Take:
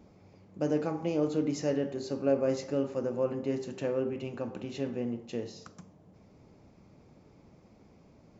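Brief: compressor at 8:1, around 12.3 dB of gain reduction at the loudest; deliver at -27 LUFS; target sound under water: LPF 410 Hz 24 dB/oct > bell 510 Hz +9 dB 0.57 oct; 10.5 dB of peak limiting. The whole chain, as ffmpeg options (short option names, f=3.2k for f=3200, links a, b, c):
-af "acompressor=threshold=-34dB:ratio=8,alimiter=level_in=10.5dB:limit=-24dB:level=0:latency=1,volume=-10.5dB,lowpass=f=410:w=0.5412,lowpass=f=410:w=1.3066,equalizer=f=510:t=o:w=0.57:g=9,volume=17dB"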